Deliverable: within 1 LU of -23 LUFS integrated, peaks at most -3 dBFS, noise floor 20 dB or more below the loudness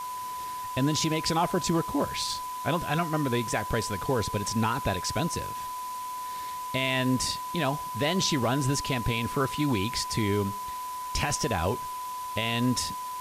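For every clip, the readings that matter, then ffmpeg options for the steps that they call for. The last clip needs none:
steady tone 1000 Hz; tone level -33 dBFS; noise floor -36 dBFS; noise floor target -49 dBFS; loudness -28.5 LUFS; peak -14.5 dBFS; loudness target -23.0 LUFS
-> -af "bandreject=f=1k:w=30"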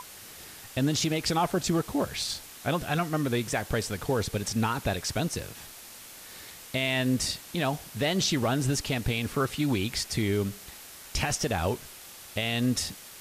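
steady tone none; noise floor -47 dBFS; noise floor target -49 dBFS
-> -af "afftdn=nr=6:nf=-47"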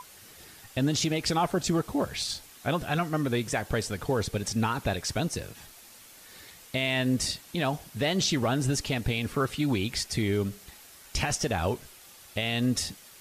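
noise floor -51 dBFS; loudness -29.0 LUFS; peak -15.5 dBFS; loudness target -23.0 LUFS
-> -af "volume=6dB"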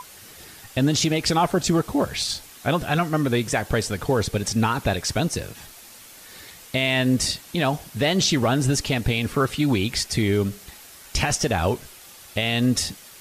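loudness -23.0 LUFS; peak -9.5 dBFS; noise floor -45 dBFS

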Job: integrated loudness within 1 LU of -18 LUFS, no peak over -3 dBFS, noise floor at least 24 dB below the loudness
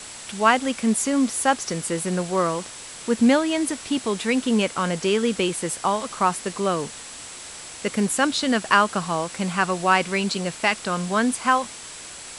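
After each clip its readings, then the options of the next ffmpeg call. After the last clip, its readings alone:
steady tone 7700 Hz; tone level -43 dBFS; noise floor -39 dBFS; noise floor target -47 dBFS; loudness -22.5 LUFS; peak -3.5 dBFS; loudness target -18.0 LUFS
-> -af "bandreject=f=7.7k:w=30"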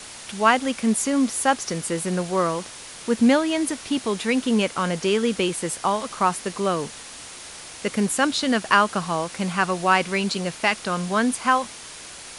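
steady tone none; noise floor -40 dBFS; noise floor target -47 dBFS
-> -af "afftdn=nr=7:nf=-40"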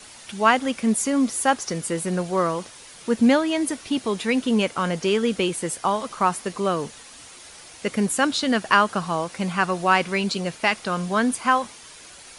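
noise floor -45 dBFS; noise floor target -47 dBFS
-> -af "afftdn=nr=6:nf=-45"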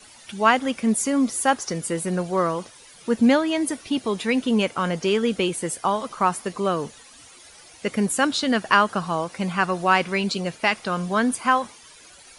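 noise floor -48 dBFS; loudness -22.5 LUFS; peak -3.0 dBFS; loudness target -18.0 LUFS
-> -af "volume=4.5dB,alimiter=limit=-3dB:level=0:latency=1"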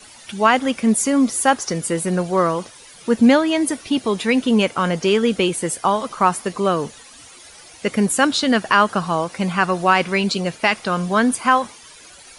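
loudness -18.5 LUFS; peak -3.0 dBFS; noise floor -44 dBFS

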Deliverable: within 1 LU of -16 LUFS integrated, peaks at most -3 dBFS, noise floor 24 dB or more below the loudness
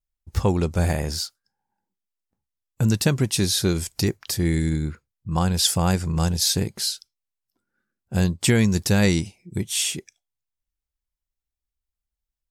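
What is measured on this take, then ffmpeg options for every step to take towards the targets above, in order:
loudness -23.0 LUFS; peak -5.5 dBFS; loudness target -16.0 LUFS
-> -af "volume=7dB,alimiter=limit=-3dB:level=0:latency=1"

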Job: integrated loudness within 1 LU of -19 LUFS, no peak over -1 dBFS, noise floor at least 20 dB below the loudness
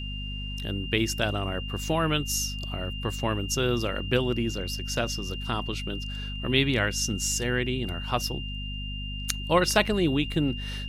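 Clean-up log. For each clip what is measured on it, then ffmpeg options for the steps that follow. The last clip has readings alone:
hum 50 Hz; harmonics up to 250 Hz; hum level -33 dBFS; steady tone 2800 Hz; tone level -37 dBFS; loudness -27.5 LUFS; peak -7.0 dBFS; loudness target -19.0 LUFS
-> -af "bandreject=f=50:t=h:w=6,bandreject=f=100:t=h:w=6,bandreject=f=150:t=h:w=6,bandreject=f=200:t=h:w=6,bandreject=f=250:t=h:w=6"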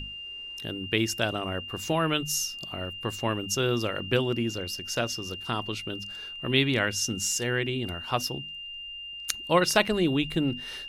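hum none; steady tone 2800 Hz; tone level -37 dBFS
-> -af "bandreject=f=2.8k:w=30"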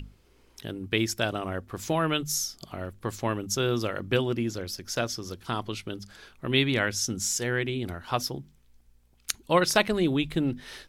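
steady tone none; loudness -28.5 LUFS; peak -6.5 dBFS; loudness target -19.0 LUFS
-> -af "volume=9.5dB,alimiter=limit=-1dB:level=0:latency=1"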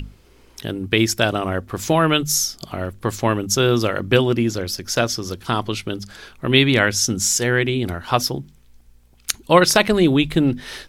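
loudness -19.0 LUFS; peak -1.0 dBFS; noise floor -51 dBFS

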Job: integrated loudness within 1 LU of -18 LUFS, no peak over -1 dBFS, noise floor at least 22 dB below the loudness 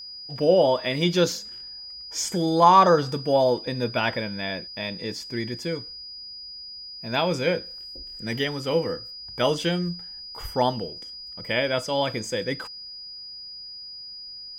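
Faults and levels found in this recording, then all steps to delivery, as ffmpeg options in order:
steady tone 4900 Hz; tone level -37 dBFS; loudness -24.0 LUFS; peak -4.0 dBFS; loudness target -18.0 LUFS
-> -af "bandreject=f=4.9k:w=30"
-af "volume=6dB,alimiter=limit=-1dB:level=0:latency=1"

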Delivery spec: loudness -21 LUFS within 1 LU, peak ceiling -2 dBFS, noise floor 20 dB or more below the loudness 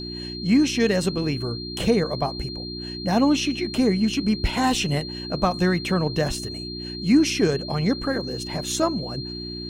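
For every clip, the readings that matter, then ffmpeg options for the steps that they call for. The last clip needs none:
hum 60 Hz; harmonics up to 360 Hz; hum level -31 dBFS; steady tone 4200 Hz; tone level -34 dBFS; loudness -23.5 LUFS; peak -7.5 dBFS; loudness target -21.0 LUFS
-> -af "bandreject=f=60:t=h:w=4,bandreject=f=120:t=h:w=4,bandreject=f=180:t=h:w=4,bandreject=f=240:t=h:w=4,bandreject=f=300:t=h:w=4,bandreject=f=360:t=h:w=4"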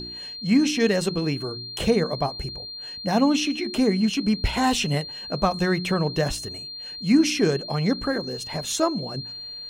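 hum none; steady tone 4200 Hz; tone level -34 dBFS
-> -af "bandreject=f=4.2k:w=30"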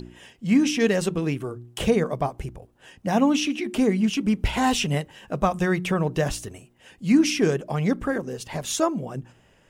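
steady tone none; loudness -24.0 LUFS; peak -7.5 dBFS; loudness target -21.0 LUFS
-> -af "volume=3dB"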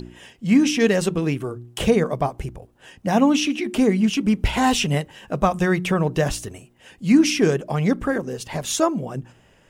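loudness -21.0 LUFS; peak -4.5 dBFS; noise floor -56 dBFS

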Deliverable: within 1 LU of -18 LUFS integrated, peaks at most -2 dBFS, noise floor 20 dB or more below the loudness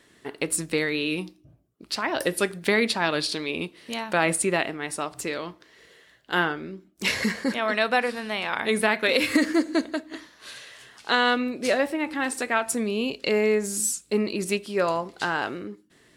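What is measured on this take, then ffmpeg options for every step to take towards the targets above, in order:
loudness -25.5 LUFS; peak -7.5 dBFS; loudness target -18.0 LUFS
-> -af "volume=7.5dB,alimiter=limit=-2dB:level=0:latency=1"

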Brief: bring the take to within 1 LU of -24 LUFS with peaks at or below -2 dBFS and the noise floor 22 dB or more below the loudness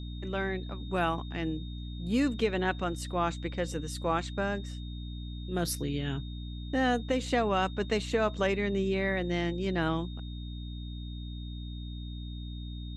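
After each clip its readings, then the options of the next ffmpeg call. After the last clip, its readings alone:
hum 60 Hz; harmonics up to 300 Hz; hum level -37 dBFS; steady tone 3700 Hz; tone level -50 dBFS; loudness -32.5 LUFS; peak -15.5 dBFS; loudness target -24.0 LUFS
-> -af "bandreject=f=60:t=h:w=4,bandreject=f=120:t=h:w=4,bandreject=f=180:t=h:w=4,bandreject=f=240:t=h:w=4,bandreject=f=300:t=h:w=4"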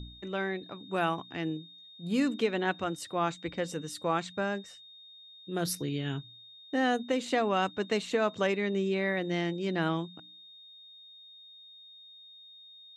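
hum none; steady tone 3700 Hz; tone level -50 dBFS
-> -af "bandreject=f=3.7k:w=30"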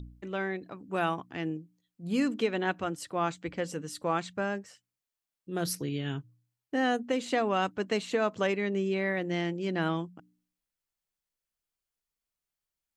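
steady tone none; loudness -31.5 LUFS; peak -16.5 dBFS; loudness target -24.0 LUFS
-> -af "volume=7.5dB"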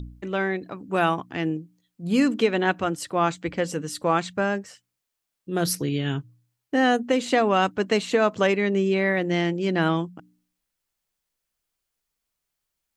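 loudness -24.0 LUFS; peak -9.0 dBFS; noise floor -82 dBFS

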